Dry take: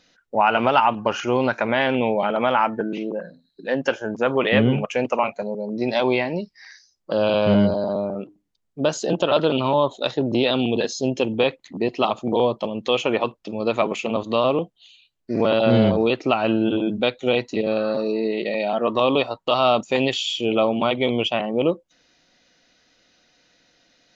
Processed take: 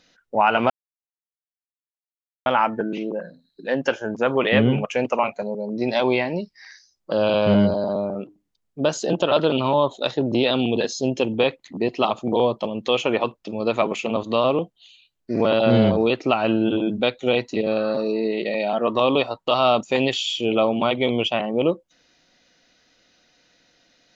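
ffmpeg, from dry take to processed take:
-filter_complex "[0:a]asplit=3[s0][s1][s2];[s0]atrim=end=0.7,asetpts=PTS-STARTPTS,afade=t=out:st=0.696:d=0.004:c=hsin[s3];[s1]atrim=start=0.7:end=2.46,asetpts=PTS-STARTPTS,volume=0[s4];[s2]atrim=start=2.46,asetpts=PTS-STARTPTS,afade=t=in:d=0.004:c=hsin[s5];[s3][s4][s5]concat=n=3:v=0:a=1"

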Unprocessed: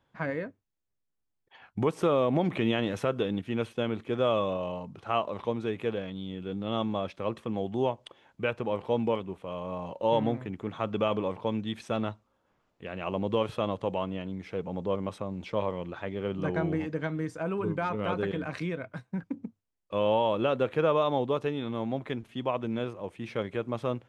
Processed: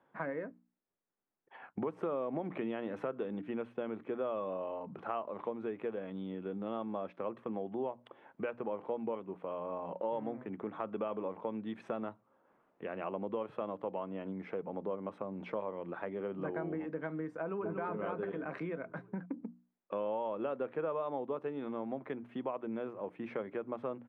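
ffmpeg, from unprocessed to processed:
-filter_complex "[0:a]asplit=2[s0][s1];[s1]afade=t=in:st=17.41:d=0.01,afade=t=out:st=17.81:d=0.01,aecho=0:1:240|480|720|960|1200|1440:0.595662|0.297831|0.148916|0.0744578|0.0372289|0.0186144[s2];[s0][s2]amix=inputs=2:normalize=0,acrossover=split=170 2100:gain=0.0708 1 0.0631[s3][s4][s5];[s3][s4][s5]amix=inputs=3:normalize=0,bandreject=f=60:t=h:w=6,bandreject=f=120:t=h:w=6,bandreject=f=180:t=h:w=6,bandreject=f=240:t=h:w=6,bandreject=f=300:t=h:w=6,acompressor=threshold=0.00794:ratio=3,volume=1.58"

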